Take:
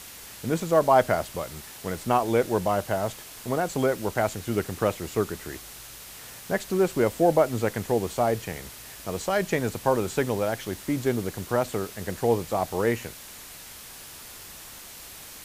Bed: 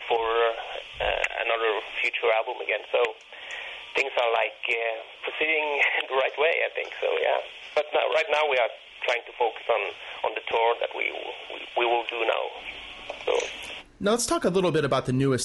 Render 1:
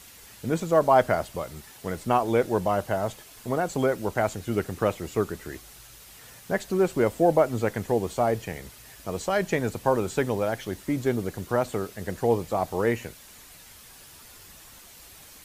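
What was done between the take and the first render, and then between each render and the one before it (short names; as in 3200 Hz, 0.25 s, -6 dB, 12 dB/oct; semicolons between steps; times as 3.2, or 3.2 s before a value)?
denoiser 7 dB, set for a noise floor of -44 dBFS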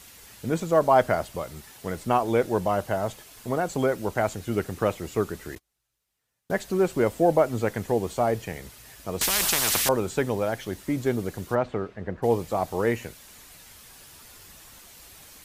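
5.55–6.54 gate -42 dBFS, range -32 dB; 9.21–9.89 spectral compressor 10:1; 11.54–12.22 LPF 3100 Hz -> 1500 Hz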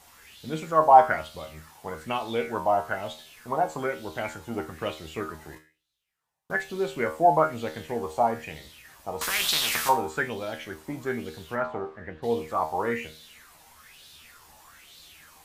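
resonator 78 Hz, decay 0.36 s, harmonics all, mix 80%; LFO bell 1.1 Hz 800–3900 Hz +16 dB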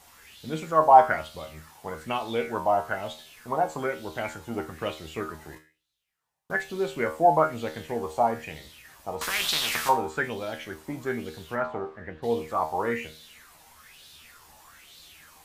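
9.15–10.24 high shelf 6300 Hz -5 dB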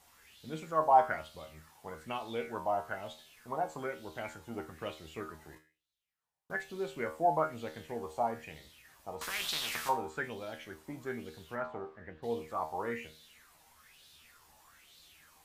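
gain -9 dB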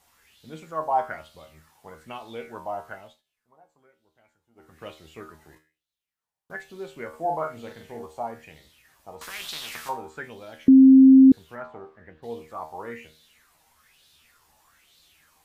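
2.92–4.85 dip -23 dB, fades 0.30 s; 7.09–8.06 doubler 43 ms -4.5 dB; 10.68–11.32 bleep 265 Hz -8 dBFS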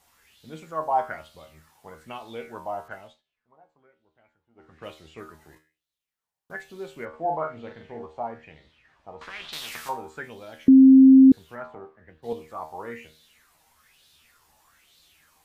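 2.88–5.21 low-pass opened by the level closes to 2700 Hz, open at -38 dBFS; 7.05–9.53 LPF 3000 Hz; 11.75–12.33 three-band expander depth 70%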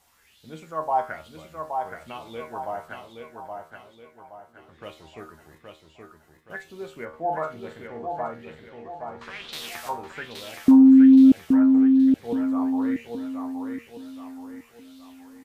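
feedback echo 0.822 s, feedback 41%, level -5 dB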